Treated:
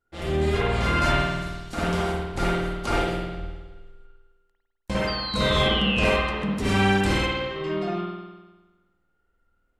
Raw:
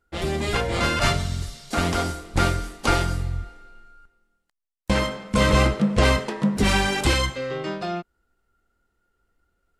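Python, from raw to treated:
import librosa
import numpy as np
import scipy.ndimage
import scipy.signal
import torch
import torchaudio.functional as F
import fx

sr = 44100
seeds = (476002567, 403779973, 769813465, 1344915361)

y = fx.spec_paint(x, sr, seeds[0], shape='fall', start_s=5.07, length_s=0.97, low_hz=2400.0, high_hz=4800.0, level_db=-25.0)
y = fx.rev_spring(y, sr, rt60_s=1.2, pass_ms=(51,), chirp_ms=75, drr_db=-6.5)
y = y * 10.0 ** (-8.5 / 20.0)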